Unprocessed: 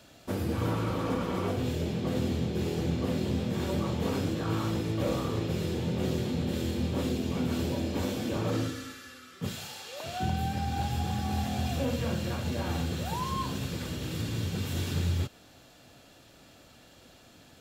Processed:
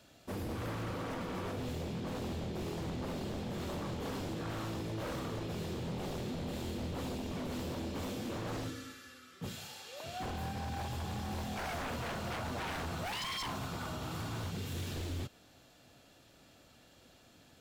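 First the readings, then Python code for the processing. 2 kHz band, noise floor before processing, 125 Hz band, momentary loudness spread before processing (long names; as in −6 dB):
−3.0 dB, −56 dBFS, −9.5 dB, 5 LU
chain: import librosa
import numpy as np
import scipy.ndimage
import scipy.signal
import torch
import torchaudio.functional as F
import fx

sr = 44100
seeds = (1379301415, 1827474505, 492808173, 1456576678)

y = fx.spec_box(x, sr, start_s=11.57, length_s=2.94, low_hz=620.0, high_hz=1500.0, gain_db=12)
y = 10.0 ** (-27.5 / 20.0) * (np.abs((y / 10.0 ** (-27.5 / 20.0) + 3.0) % 4.0 - 2.0) - 1.0)
y = y * librosa.db_to_amplitude(-6.0)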